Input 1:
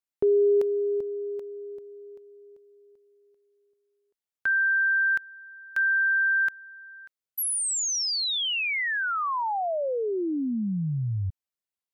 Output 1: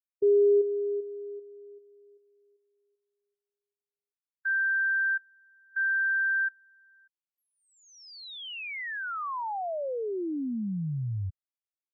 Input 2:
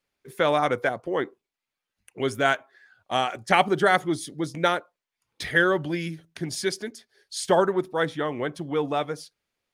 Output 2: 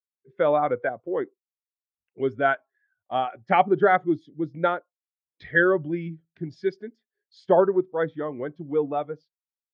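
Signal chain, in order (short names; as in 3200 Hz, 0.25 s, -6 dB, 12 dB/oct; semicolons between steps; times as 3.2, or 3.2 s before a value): air absorption 200 m; spectral expander 1.5:1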